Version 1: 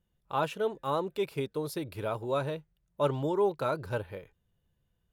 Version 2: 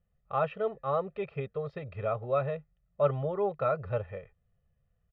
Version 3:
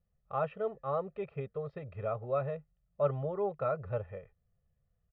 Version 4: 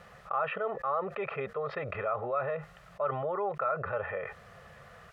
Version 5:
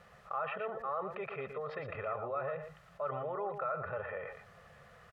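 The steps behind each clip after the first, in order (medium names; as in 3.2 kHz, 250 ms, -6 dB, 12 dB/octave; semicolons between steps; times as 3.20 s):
low-pass 2.5 kHz 24 dB/octave; comb 1.6 ms, depth 99%; trim -2.5 dB
treble shelf 2.8 kHz -10.5 dB; trim -3 dB
band-pass filter 1.4 kHz, Q 1.3; level flattener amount 70%; trim +4.5 dB
delay 117 ms -8 dB; trim -6 dB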